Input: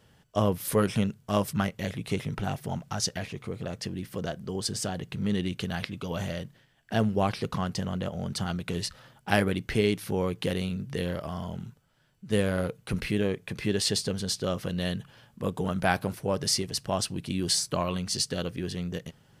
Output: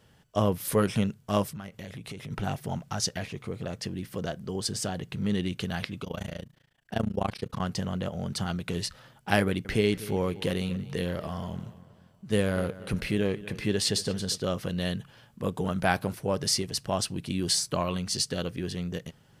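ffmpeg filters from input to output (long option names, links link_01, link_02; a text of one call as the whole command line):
ffmpeg -i in.wav -filter_complex "[0:a]asettb=1/sr,asplit=3[link_01][link_02][link_03];[link_01]atrim=end=1.454[link_04];[link_02]atrim=start=1.45:end=2.31,asetpts=PTS-STARTPTS,afade=type=in:duration=0.004:curve=qsin,afade=type=out:start_time=0.856:duration=0.004:curve=qsin,acompressor=threshold=-36dB:ratio=8:attack=3.2:release=140:knee=1:detection=peak[link_05];[link_03]atrim=start=2.306[link_06];[link_04][link_05]acrossfade=duration=0.004:curve1=hsin:curve2=qsin[link_07];[link_07][link_06]acrossfade=duration=0.004:curve1=qsin:curve2=hsin,asettb=1/sr,asplit=3[link_08][link_09][link_10];[link_08]atrim=end=6.044[link_11];[link_09]atrim=start=6.04:end=7.6,asetpts=PTS-STARTPTS,afade=type=in:duration=0.004:curve=qsin,afade=type=out:start_time=1.556:duration=0.004:curve=qsin,tremolo=f=28:d=0.974[link_12];[link_10]atrim=start=7.596[link_13];[link_11][link_12]acrossfade=duration=0.004:curve1=hsin:curve2=qsin[link_14];[link_14][link_13]acrossfade=duration=0.004:curve1=qsin:curve2=hsin,asettb=1/sr,asplit=3[link_15][link_16][link_17];[link_15]atrim=end=9.414[link_18];[link_16]atrim=start=9.41:end=14.38,asetpts=PTS-STARTPTS,afade=type=in:duration=0.004:curve=qsin,afade=type=out:start_time=4.966:duration=0.004:curve=qsin,asplit=2[link_19][link_20];[link_20]adelay=238,lowpass=frequency=4400:poles=1,volume=-16.5dB,asplit=2[link_21][link_22];[link_22]adelay=238,lowpass=frequency=4400:poles=1,volume=0.47,asplit=2[link_23][link_24];[link_24]adelay=238,lowpass=frequency=4400:poles=1,volume=0.47,asplit=2[link_25][link_26];[link_26]adelay=238,lowpass=frequency=4400:poles=1,volume=0.47[link_27];[link_19][link_21][link_23][link_25][link_27]amix=inputs=5:normalize=0,atrim=end_sample=219177[link_28];[link_17]atrim=start=14.376[link_29];[link_18][link_28]acrossfade=duration=0.004:curve1=hsin:curve2=qsin[link_30];[link_30][link_29]acrossfade=duration=0.004:curve1=qsin:curve2=hsin" out.wav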